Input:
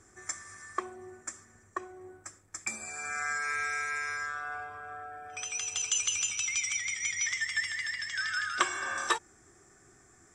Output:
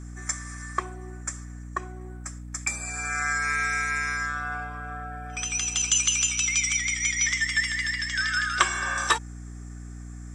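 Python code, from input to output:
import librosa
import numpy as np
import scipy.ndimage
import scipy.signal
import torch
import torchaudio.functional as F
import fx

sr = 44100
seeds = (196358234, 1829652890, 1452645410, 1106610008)

y = fx.highpass(x, sr, hz=650.0, slope=6)
y = fx.add_hum(y, sr, base_hz=60, snr_db=10)
y = y * 10.0 ** (7.0 / 20.0)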